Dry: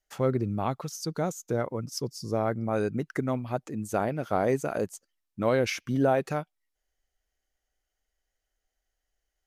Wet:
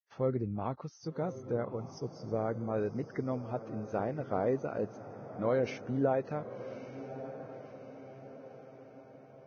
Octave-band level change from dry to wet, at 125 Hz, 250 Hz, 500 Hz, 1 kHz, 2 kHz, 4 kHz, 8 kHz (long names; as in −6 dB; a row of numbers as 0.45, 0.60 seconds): −6.0 dB, −5.5 dB, −4.5 dB, −7.0 dB, −10.0 dB, below −10 dB, below −15 dB